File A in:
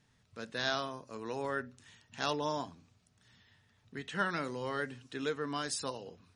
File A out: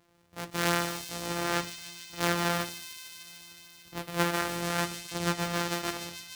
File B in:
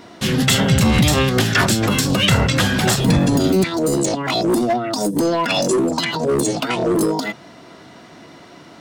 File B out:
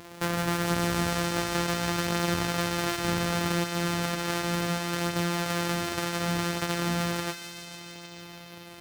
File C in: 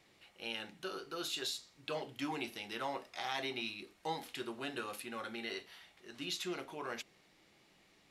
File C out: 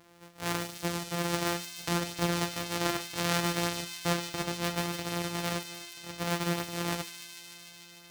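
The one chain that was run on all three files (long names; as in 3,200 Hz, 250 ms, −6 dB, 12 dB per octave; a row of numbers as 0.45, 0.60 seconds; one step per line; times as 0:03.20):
samples sorted by size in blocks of 256 samples
low-shelf EQ 92 Hz −11.5 dB
downward compressor 2.5 to 1, threshold −26 dBFS
delay with a high-pass on its return 149 ms, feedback 83%, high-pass 3,500 Hz, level −6.5 dB
flanger 0.34 Hz, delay 8.6 ms, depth 5.8 ms, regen −61%
dynamic equaliser 1,500 Hz, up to +5 dB, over −50 dBFS, Q 1.9
normalise the peak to −12 dBFS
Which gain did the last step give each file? +10.0, +1.5, +14.5 decibels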